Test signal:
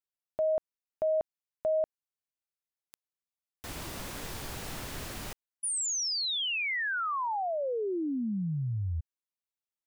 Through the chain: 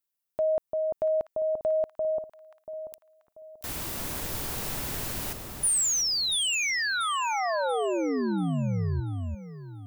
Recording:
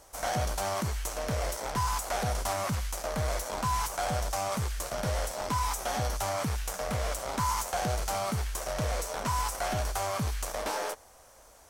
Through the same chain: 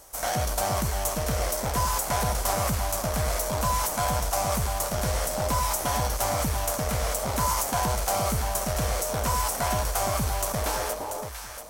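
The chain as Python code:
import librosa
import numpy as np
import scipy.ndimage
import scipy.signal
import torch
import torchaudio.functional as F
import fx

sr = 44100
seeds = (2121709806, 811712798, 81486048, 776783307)

y = fx.high_shelf(x, sr, hz=9800.0, db=11.5)
y = fx.echo_alternate(y, sr, ms=343, hz=1100.0, feedback_pct=57, wet_db=-3.0)
y = F.gain(torch.from_numpy(y), 2.5).numpy()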